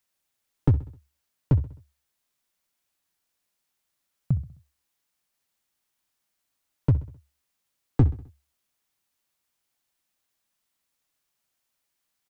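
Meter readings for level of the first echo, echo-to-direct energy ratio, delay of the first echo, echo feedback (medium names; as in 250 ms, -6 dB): -17.0 dB, -16.0 dB, 65 ms, 50%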